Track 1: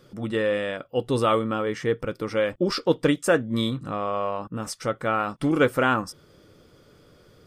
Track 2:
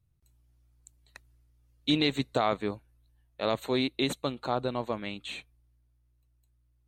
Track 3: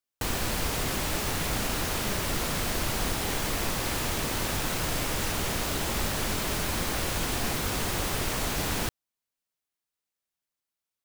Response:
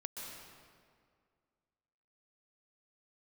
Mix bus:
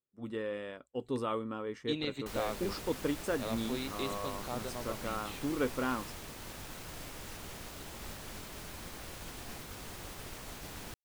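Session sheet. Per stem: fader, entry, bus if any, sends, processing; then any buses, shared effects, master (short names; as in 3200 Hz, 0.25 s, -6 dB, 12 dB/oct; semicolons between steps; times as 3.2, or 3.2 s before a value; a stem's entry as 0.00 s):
-15.5 dB, 0.00 s, no send, thirty-one-band EQ 250 Hz +8 dB, 400 Hz +6 dB, 1000 Hz +6 dB
-3.0 dB, 0.00 s, no send, resonator 200 Hz, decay 1.2 s, mix 60%
-15.0 dB, 2.05 s, no send, dry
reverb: off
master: expander -42 dBFS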